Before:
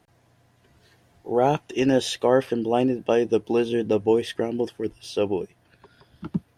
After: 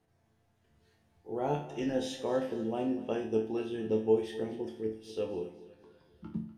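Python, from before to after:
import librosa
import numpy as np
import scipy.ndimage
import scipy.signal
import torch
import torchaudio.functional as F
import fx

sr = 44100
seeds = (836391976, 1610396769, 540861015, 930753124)

y = fx.low_shelf(x, sr, hz=480.0, db=5.0)
y = fx.resonator_bank(y, sr, root=38, chord='minor', decay_s=0.48)
y = fx.echo_feedback(y, sr, ms=246, feedback_pct=44, wet_db=-16.0)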